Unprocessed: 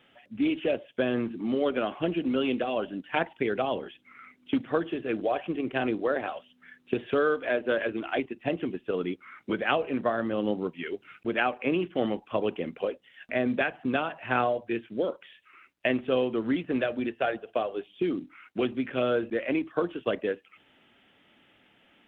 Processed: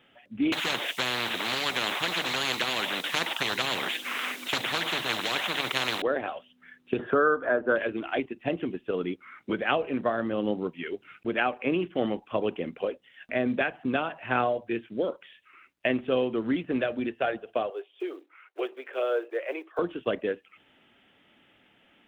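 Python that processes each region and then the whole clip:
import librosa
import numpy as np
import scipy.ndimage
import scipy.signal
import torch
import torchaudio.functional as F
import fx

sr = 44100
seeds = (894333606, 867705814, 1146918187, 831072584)

y = fx.chain(x, sr, fx.highpass(hz=530.0, slope=12),
    fx.high_shelf(hz=2300.0, db=11.5),
    fx.spectral_comp(ratio=10.0), at=(0.52, 6.02))
y = fx.chain(y, sr, fx.high_shelf_res(hz=1900.0, db=-10.0, q=3.0),
    fx.band_squash(depth_pct=40), at=(6.99, 7.76))
y = fx.chain(y, sr, fx.block_float(bits=7),
    fx.steep_highpass(hz=380.0, slope=48),
    fx.high_shelf(hz=3200.0, db=-10.5), at=(17.7, 19.79))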